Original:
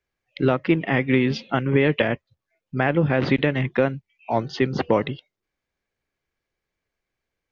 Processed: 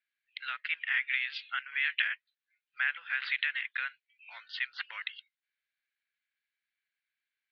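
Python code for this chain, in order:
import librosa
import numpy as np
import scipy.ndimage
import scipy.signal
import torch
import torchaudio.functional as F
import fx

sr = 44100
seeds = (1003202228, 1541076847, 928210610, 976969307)

y = scipy.signal.sosfilt(scipy.signal.ellip(3, 1.0, 70, [1500.0, 4200.0], 'bandpass', fs=sr, output='sos'), x)
y = y * librosa.db_to_amplitude(-2.0)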